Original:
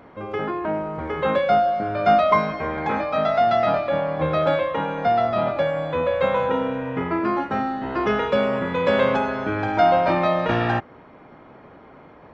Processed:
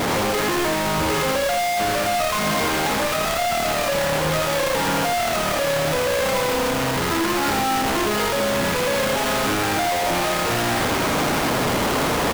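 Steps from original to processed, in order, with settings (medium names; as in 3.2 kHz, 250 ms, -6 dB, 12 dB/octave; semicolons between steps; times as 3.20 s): one-bit comparator; on a send: delay 82 ms -5.5 dB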